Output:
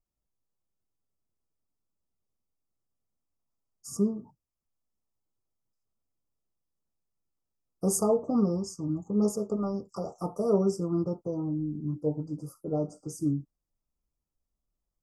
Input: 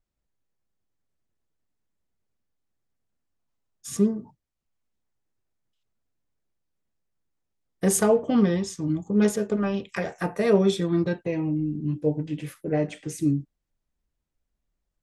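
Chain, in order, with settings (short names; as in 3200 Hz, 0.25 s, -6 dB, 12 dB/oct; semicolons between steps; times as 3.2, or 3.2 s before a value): brick-wall FIR band-stop 1400–4600 Hz; gain -5 dB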